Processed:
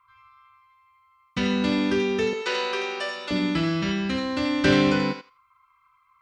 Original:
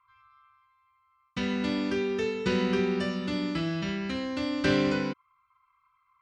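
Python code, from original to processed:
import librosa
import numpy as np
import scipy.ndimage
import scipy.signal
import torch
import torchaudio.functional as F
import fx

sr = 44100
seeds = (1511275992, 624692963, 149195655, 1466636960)

y = fx.highpass(x, sr, hz=490.0, slope=24, at=(2.33, 3.31))
y = fx.echo_thinned(y, sr, ms=83, feedback_pct=17, hz=830.0, wet_db=-6.0)
y = y * 10.0 ** (5.5 / 20.0)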